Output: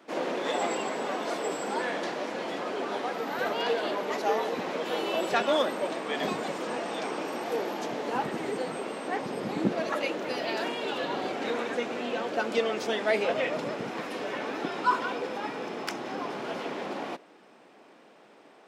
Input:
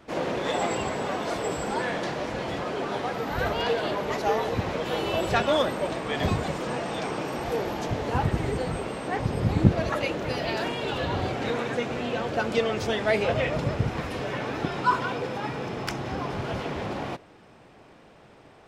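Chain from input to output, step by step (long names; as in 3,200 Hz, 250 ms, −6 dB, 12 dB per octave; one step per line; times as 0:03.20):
high-pass filter 220 Hz 24 dB per octave
level −2 dB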